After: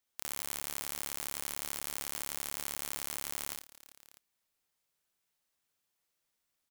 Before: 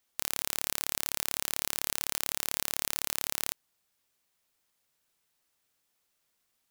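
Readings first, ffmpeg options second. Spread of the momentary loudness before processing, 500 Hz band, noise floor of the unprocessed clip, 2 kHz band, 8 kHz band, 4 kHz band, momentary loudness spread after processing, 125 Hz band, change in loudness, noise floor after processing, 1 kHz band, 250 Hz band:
2 LU, −4.5 dB, −77 dBFS, −5.5 dB, −5.0 dB, −8.0 dB, 5 LU, −4.0 dB, −6.0 dB, −83 dBFS, −4.0 dB, −4.0 dB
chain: -af "aecho=1:1:56|68|95|396|651:0.422|0.631|0.266|0.119|0.112,volume=-8dB"

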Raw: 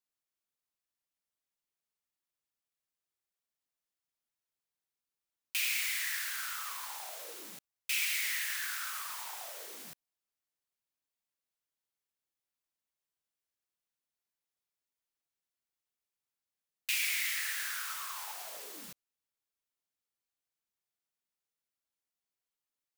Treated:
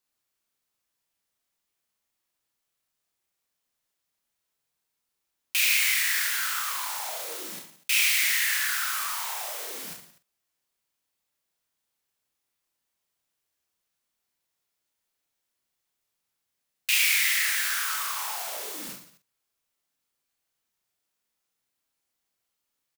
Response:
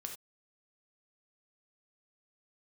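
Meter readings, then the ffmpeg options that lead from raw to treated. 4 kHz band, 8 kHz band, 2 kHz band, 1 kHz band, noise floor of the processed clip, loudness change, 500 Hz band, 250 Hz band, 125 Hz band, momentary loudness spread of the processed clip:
+10.0 dB, +10.0 dB, +10.0 dB, +10.0 dB, −82 dBFS, +10.0 dB, +9.5 dB, +10.0 dB, can't be measured, 16 LU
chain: -filter_complex "[0:a]asplit=2[link_01][link_02];[link_02]adelay=46,volume=-11.5dB[link_03];[link_01][link_03]amix=inputs=2:normalize=0,asplit=2[link_04][link_05];[link_05]aecho=0:1:30|67.5|114.4|173|246.2:0.631|0.398|0.251|0.158|0.1[link_06];[link_04][link_06]amix=inputs=2:normalize=0,volume=7.5dB"

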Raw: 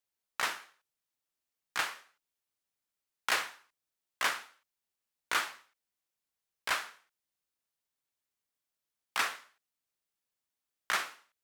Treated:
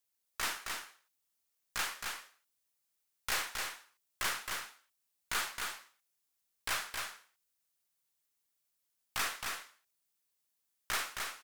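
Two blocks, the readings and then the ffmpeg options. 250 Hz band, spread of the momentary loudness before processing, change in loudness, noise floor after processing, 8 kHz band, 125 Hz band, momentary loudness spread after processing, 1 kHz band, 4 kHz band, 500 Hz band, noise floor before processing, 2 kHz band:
−0.5 dB, 12 LU, −3.0 dB, −82 dBFS, +3.0 dB, can't be measured, 14 LU, −3.5 dB, −0.5 dB, −3.0 dB, below −85 dBFS, −3.0 dB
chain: -filter_complex "[0:a]highshelf=frequency=4900:gain=9,aeval=exprs='(tanh(28.2*val(0)+0.4)-tanh(0.4))/28.2':channel_layout=same,asplit=2[link_01][link_02];[link_02]aecho=0:1:267:0.596[link_03];[link_01][link_03]amix=inputs=2:normalize=0"

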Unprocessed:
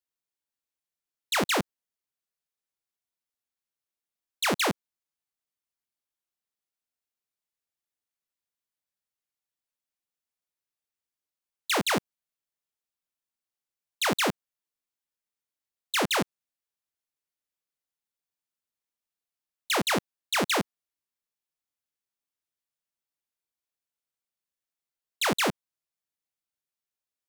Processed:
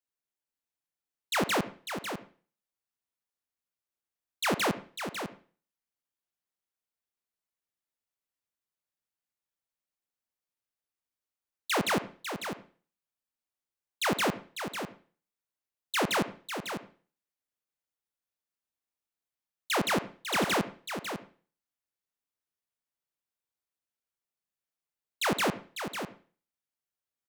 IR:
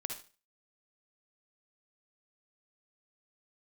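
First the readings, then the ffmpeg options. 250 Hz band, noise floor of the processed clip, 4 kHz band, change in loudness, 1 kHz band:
−0.5 dB, below −85 dBFS, −3.5 dB, −4.5 dB, −1.0 dB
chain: -filter_complex "[0:a]aecho=1:1:549:0.376,asplit=2[link_01][link_02];[1:a]atrim=start_sample=2205,asetrate=38367,aresample=44100,lowpass=2800[link_03];[link_02][link_03]afir=irnorm=-1:irlink=0,volume=-7.5dB[link_04];[link_01][link_04]amix=inputs=2:normalize=0,volume=-4dB"

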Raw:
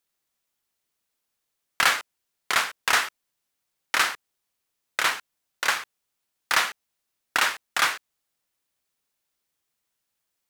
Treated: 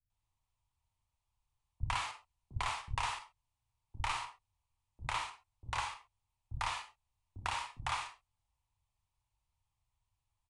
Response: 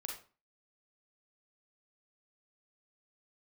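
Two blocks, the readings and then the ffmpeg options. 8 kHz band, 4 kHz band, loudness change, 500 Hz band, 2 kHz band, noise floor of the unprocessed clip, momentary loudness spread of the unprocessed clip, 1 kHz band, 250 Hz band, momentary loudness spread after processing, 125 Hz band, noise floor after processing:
−17.5 dB, −16.0 dB, −15.0 dB, −15.5 dB, −18.5 dB, −80 dBFS, 10 LU, −10.0 dB, −12.0 dB, 16 LU, can't be measured, below −85 dBFS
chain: -filter_complex "[0:a]acrossover=split=2500[link_01][link_02];[link_02]acompressor=threshold=-28dB:ratio=4:attack=1:release=60[link_03];[link_01][link_03]amix=inputs=2:normalize=0,firequalizer=gain_entry='entry(100,0);entry(170,-20);entry(480,-27);entry(920,-8);entry(1500,-28);entry(2400,-19);entry(5100,-25);entry(7500,-23)':delay=0.05:min_phase=1,acrossover=split=170|3000[link_04][link_05][link_06];[link_05]acompressor=threshold=-47dB:ratio=6[link_07];[link_04][link_07][link_06]amix=inputs=3:normalize=0,acrossover=split=280[link_08][link_09];[link_09]adelay=100[link_10];[link_08][link_10]amix=inputs=2:normalize=0,asplit=2[link_11][link_12];[1:a]atrim=start_sample=2205,atrim=end_sample=6174,lowshelf=frequency=380:gain=11.5[link_13];[link_12][link_13]afir=irnorm=-1:irlink=0,volume=2.5dB[link_14];[link_11][link_14]amix=inputs=2:normalize=0,aresample=22050,aresample=44100,volume=6dB"

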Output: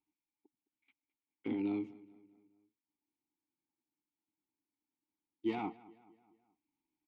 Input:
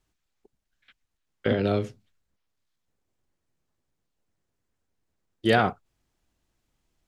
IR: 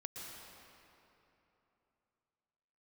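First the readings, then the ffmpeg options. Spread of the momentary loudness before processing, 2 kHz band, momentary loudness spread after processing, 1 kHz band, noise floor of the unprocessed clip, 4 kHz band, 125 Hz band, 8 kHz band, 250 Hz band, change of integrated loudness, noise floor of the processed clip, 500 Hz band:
9 LU, −22.0 dB, 16 LU, −17.0 dB, −80 dBFS, −22.5 dB, −22.5 dB, can't be measured, −8.0 dB, −13.5 dB, below −85 dBFS, −18.0 dB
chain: -filter_complex "[0:a]asoftclip=type=hard:threshold=-14dB,asplit=3[link_01][link_02][link_03];[link_01]bandpass=frequency=300:width_type=q:width=8,volume=0dB[link_04];[link_02]bandpass=frequency=870:width_type=q:width=8,volume=-6dB[link_05];[link_03]bandpass=frequency=2240:width_type=q:width=8,volume=-9dB[link_06];[link_04][link_05][link_06]amix=inputs=3:normalize=0,asplit=2[link_07][link_08];[link_08]adelay=213,lowpass=frequency=4000:poles=1,volume=-20.5dB,asplit=2[link_09][link_10];[link_10]adelay=213,lowpass=frequency=4000:poles=1,volume=0.5,asplit=2[link_11][link_12];[link_12]adelay=213,lowpass=frequency=4000:poles=1,volume=0.5,asplit=2[link_13][link_14];[link_14]adelay=213,lowpass=frequency=4000:poles=1,volume=0.5[link_15];[link_07][link_09][link_11][link_13][link_15]amix=inputs=5:normalize=0"

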